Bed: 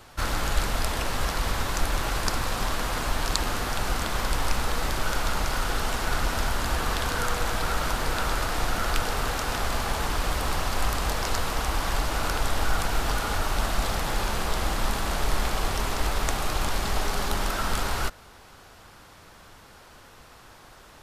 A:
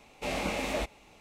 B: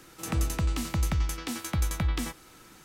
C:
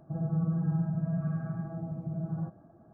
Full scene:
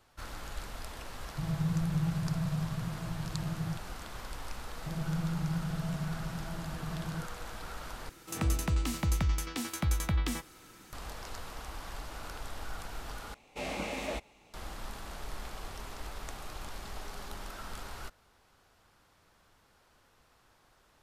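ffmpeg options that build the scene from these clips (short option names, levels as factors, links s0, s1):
-filter_complex "[3:a]asplit=2[s0][s1];[0:a]volume=0.158[s2];[s0]equalizer=f=96:w=1.5:g=14[s3];[s2]asplit=3[s4][s5][s6];[s4]atrim=end=8.094[s7];[2:a]atrim=end=2.84,asetpts=PTS-STARTPTS,volume=0.794[s8];[s5]atrim=start=10.926:end=13.344[s9];[1:a]atrim=end=1.2,asetpts=PTS-STARTPTS,volume=0.596[s10];[s6]atrim=start=14.536[s11];[s3]atrim=end=2.93,asetpts=PTS-STARTPTS,volume=0.473,afade=t=in:d=0.004:c=hsin,afade=t=out:st=2.926:d=0.004:c=hsin,adelay=1280[s12];[s1]atrim=end=2.93,asetpts=PTS-STARTPTS,volume=0.596,afade=t=in:d=0.004:c=hsin,afade=t=out:st=2.926:d=0.004:c=hsin,adelay=4760[s13];[s7][s8]acrossfade=d=0.004:c1=hsin:c2=hsin[s14];[s14][s9]acrossfade=d=0.004:c1=hsin:c2=hsin[s15];[s15][s10]acrossfade=d=0.004:c1=hsin:c2=hsin[s16];[s16][s11]acrossfade=d=0.004:c1=hsin:c2=hsin[s17];[s17][s12][s13]amix=inputs=3:normalize=0"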